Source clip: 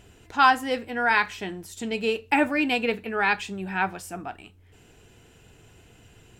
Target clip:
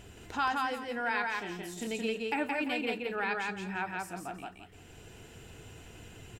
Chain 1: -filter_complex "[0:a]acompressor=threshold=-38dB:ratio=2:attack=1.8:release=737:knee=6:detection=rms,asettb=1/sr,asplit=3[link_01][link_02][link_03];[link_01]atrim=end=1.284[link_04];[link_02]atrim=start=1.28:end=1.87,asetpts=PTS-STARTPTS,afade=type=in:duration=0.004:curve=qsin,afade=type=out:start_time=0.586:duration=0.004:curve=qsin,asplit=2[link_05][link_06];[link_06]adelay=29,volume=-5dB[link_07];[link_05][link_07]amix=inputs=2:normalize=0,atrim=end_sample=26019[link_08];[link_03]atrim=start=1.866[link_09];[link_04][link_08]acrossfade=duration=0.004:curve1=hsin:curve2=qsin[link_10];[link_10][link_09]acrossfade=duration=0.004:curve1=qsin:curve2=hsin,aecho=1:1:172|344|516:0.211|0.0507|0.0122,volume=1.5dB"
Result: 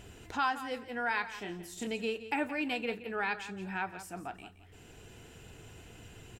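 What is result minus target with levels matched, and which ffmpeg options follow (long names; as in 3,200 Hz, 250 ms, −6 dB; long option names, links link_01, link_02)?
echo-to-direct −11 dB
-filter_complex "[0:a]acompressor=threshold=-38dB:ratio=2:attack=1.8:release=737:knee=6:detection=rms,asettb=1/sr,asplit=3[link_01][link_02][link_03];[link_01]atrim=end=1.284[link_04];[link_02]atrim=start=1.28:end=1.87,asetpts=PTS-STARTPTS,afade=type=in:duration=0.004:curve=qsin,afade=type=out:start_time=0.586:duration=0.004:curve=qsin,asplit=2[link_05][link_06];[link_06]adelay=29,volume=-5dB[link_07];[link_05][link_07]amix=inputs=2:normalize=0,atrim=end_sample=26019[link_08];[link_03]atrim=start=1.866[link_09];[link_04][link_08]acrossfade=duration=0.004:curve1=hsin:curve2=qsin[link_10];[link_10][link_09]acrossfade=duration=0.004:curve1=qsin:curve2=hsin,aecho=1:1:172|344|516|688:0.75|0.18|0.0432|0.0104,volume=1.5dB"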